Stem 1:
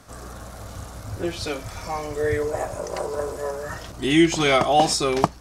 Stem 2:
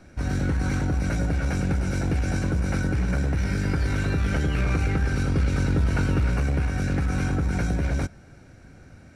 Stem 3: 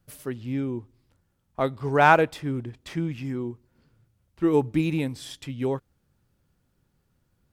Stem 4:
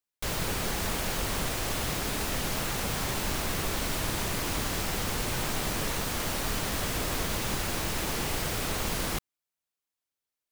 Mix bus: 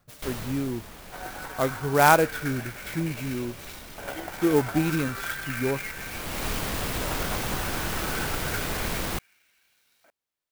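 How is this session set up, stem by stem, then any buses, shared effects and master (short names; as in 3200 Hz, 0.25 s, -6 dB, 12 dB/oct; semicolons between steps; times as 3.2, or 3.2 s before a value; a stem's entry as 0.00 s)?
-17.0 dB, 0.00 s, no send, HPF 410 Hz; chopper 12 Hz, depth 60%, duty 40%
-4.5 dB, 0.95 s, no send, LFO high-pass saw up 0.33 Hz 630–3900 Hz
-0.5 dB, 0.00 s, no send, dry
+1.5 dB, 0.00 s, no send, auto duck -15 dB, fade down 0.85 s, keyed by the third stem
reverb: off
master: vibrato 2.3 Hz 21 cents; clock jitter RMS 0.038 ms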